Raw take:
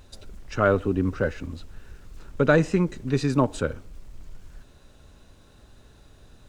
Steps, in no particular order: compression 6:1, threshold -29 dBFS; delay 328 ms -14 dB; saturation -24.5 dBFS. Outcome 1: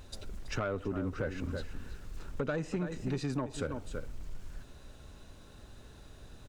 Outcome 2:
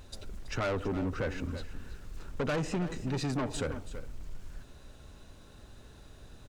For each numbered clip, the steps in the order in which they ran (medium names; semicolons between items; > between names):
delay > compression > saturation; saturation > delay > compression